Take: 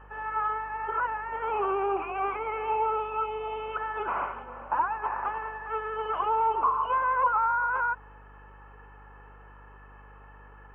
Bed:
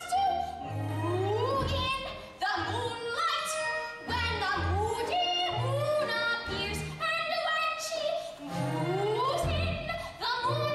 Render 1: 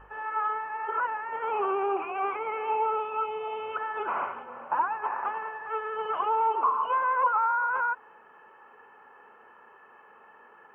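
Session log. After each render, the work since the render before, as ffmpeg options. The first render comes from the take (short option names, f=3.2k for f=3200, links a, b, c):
-af "bandreject=f=50:t=h:w=4,bandreject=f=100:t=h:w=4,bandreject=f=150:t=h:w=4,bandreject=f=200:t=h:w=4,bandreject=f=250:t=h:w=4,bandreject=f=300:t=h:w=4"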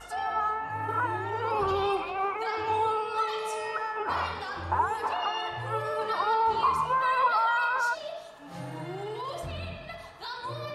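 -filter_complex "[1:a]volume=-7dB[a];[0:a][a]amix=inputs=2:normalize=0"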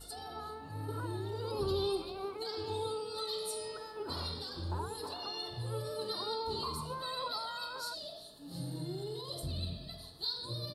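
-af "firequalizer=gain_entry='entry(280,0);entry(780,-16);entry(2400,-20);entry(4200,10);entry(6200,-10);entry(8900,6)':delay=0.05:min_phase=1"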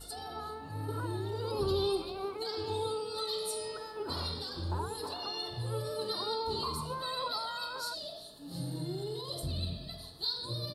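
-af "volume=2.5dB"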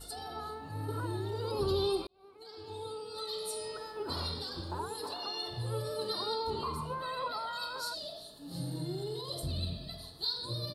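-filter_complex "[0:a]asettb=1/sr,asplit=3[a][b][c];[a]atrim=end=4.614[d];[b]atrim=start=4.61:end=5.47,asetpts=PTS-STARTPTS,afade=t=in:d=0.004:c=qsin,afade=t=out:st=0.856:d=0.004:c=qsin,highpass=f=200:p=1[e];[c]atrim=start=5.466[f];[d][e]acrossfade=d=0.004:c1=hsin:c2=qsin[g];[g][f]acrossfade=d=0.004:c1=qsin:c2=hsin,asettb=1/sr,asplit=3[h][i][j];[h]atrim=end=6.504[k];[i]atrim=start=6.5:end=7.53,asetpts=PTS-STARTPTS,afade=t=in:d=0.004:c=qsin,afade=t=out:st=1.026:d=0.004:c=qsin,highshelf=f=3.2k:t=q:w=1.5:g=-7[l];[j]atrim=start=7.526[m];[k][l]acrossfade=d=0.004:c1=hsin:c2=qsin[n];[n][m]acrossfade=d=0.004:c1=qsin:c2=hsin,asplit=2[o][p];[o]atrim=end=2.07,asetpts=PTS-STARTPTS,afade=t=out:st=2.066:d=0.004:c=hsin[q];[p]atrim=start=2.07,asetpts=PTS-STARTPTS,afade=t=in:d=1.8[r];[q][r]concat=n=2:v=0:a=1"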